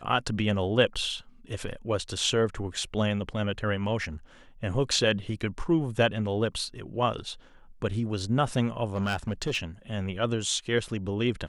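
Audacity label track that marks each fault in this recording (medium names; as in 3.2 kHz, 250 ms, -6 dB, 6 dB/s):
8.940000	9.570000	clipped -23 dBFS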